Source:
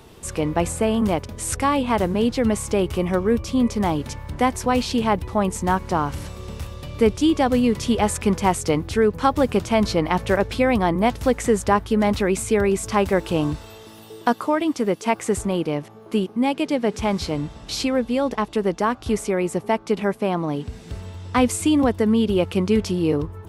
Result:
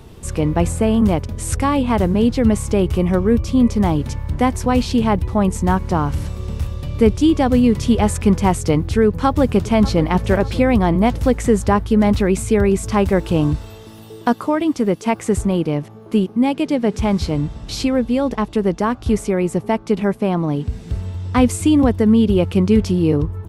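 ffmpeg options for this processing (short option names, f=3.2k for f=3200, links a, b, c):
-filter_complex "[0:a]asplit=2[a][b];[b]afade=t=in:st=9.06:d=0.01,afade=t=out:st=10.01:d=0.01,aecho=0:1:590|1180|1770|2360:0.158489|0.0713202|0.0320941|0.0144423[c];[a][c]amix=inputs=2:normalize=0,lowshelf=f=240:g=11"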